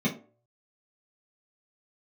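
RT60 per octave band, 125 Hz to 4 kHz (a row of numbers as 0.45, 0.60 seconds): 0.45, 0.40, 0.50, 0.40, 0.25, 0.20 seconds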